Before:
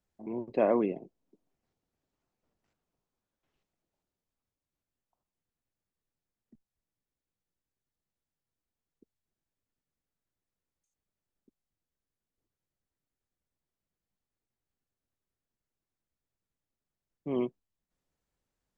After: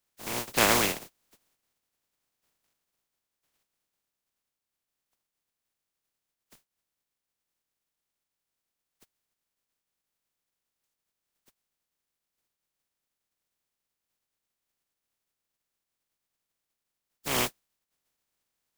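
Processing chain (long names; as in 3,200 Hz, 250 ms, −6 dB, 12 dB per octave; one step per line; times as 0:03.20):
compressing power law on the bin magnitudes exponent 0.2
level +3 dB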